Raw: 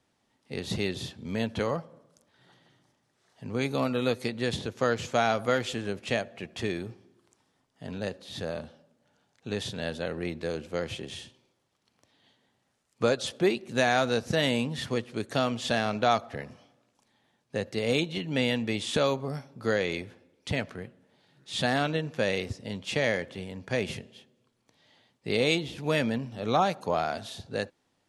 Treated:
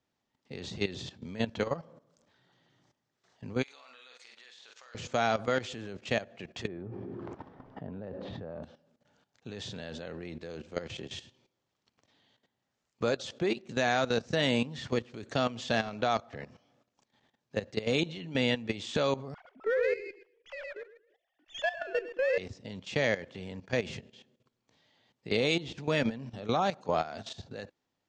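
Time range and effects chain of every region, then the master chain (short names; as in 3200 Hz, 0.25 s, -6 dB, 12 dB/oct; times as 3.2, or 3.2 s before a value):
3.63–4.95 HPF 1300 Hz + compressor 16:1, threshold -42 dBFS + flutter echo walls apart 8.1 m, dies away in 0.38 s
6.67–8.63 LPF 1100 Hz + fast leveller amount 70%
19.34–22.38 sine-wave speech + feedback echo 0.112 s, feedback 20%, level -6 dB + running maximum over 3 samples
whole clip: steep low-pass 7600 Hz 48 dB/oct; level quantiser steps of 14 dB; gain +1 dB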